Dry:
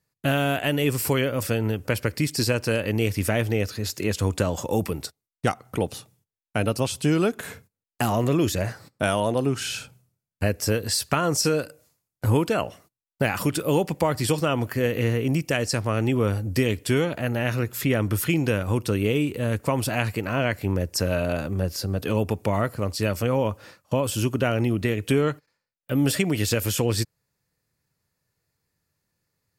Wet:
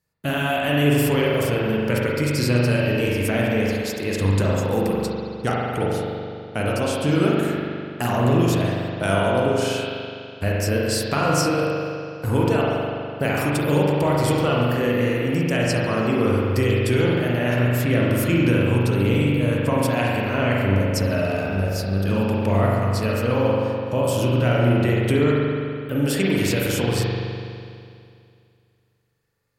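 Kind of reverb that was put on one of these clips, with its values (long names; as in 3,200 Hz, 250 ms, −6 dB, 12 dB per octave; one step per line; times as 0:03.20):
spring reverb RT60 2.4 s, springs 41 ms, chirp 30 ms, DRR −4.5 dB
level −2 dB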